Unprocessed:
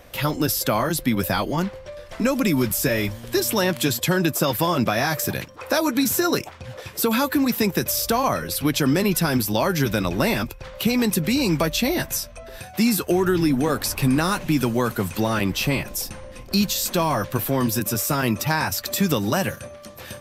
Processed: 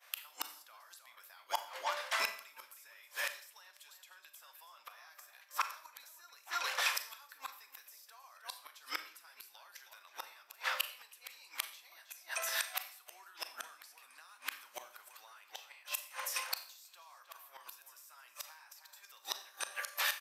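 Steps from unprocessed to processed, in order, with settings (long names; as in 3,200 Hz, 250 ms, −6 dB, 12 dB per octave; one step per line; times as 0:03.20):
high-pass filter 920 Hz 24 dB per octave
downward expander −43 dBFS
downward compressor 20 to 1, threshold −33 dBFS, peak gain reduction 14.5 dB
slap from a distant wall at 54 metres, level −7 dB
gate with flip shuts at −28 dBFS, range −30 dB
four-comb reverb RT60 0.5 s, combs from 28 ms, DRR 9 dB
level +8.5 dB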